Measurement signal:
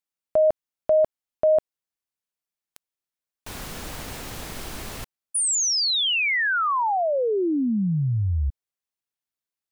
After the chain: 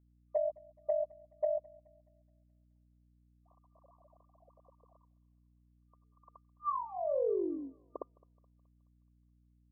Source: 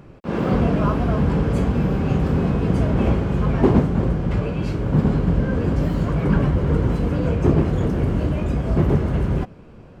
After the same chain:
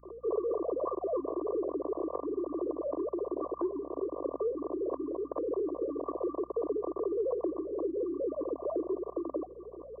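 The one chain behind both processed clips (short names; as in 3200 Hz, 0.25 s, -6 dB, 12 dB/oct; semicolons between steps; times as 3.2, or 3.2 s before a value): sine-wave speech; FFT band-pass 260–1200 Hz; compressor 10:1, threshold -29 dBFS; fixed phaser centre 840 Hz, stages 6; hum 60 Hz, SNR 27 dB; on a send: thinning echo 0.212 s, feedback 59%, high-pass 690 Hz, level -21.5 dB; on the sum: gain +1 dB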